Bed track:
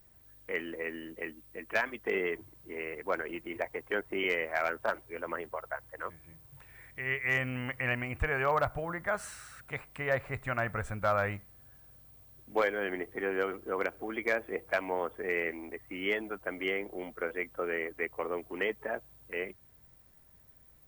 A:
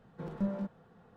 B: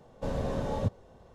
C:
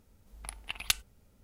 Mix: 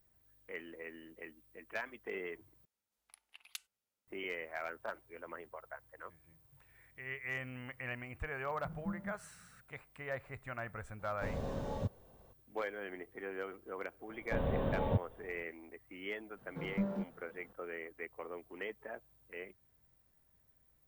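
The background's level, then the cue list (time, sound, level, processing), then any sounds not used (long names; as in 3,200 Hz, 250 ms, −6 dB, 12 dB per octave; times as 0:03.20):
bed track −10.5 dB
0:02.65: overwrite with C −17.5 dB + high-pass filter 1,500 Hz 6 dB per octave
0:08.45: mix in A −17.5 dB + low shelf with overshoot 230 Hz +12 dB, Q 1.5
0:10.99: mix in B −7.5 dB
0:14.09: mix in B −2.5 dB + downsampling to 8,000 Hz
0:16.37: mix in A −2 dB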